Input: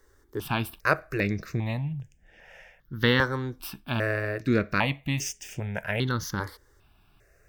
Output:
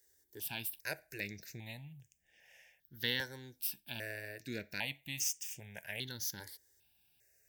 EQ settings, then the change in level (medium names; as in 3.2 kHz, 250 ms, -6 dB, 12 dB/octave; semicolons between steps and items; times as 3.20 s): high-pass 63 Hz; Butterworth band-stop 1.2 kHz, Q 1.8; pre-emphasis filter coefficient 0.9; 0.0 dB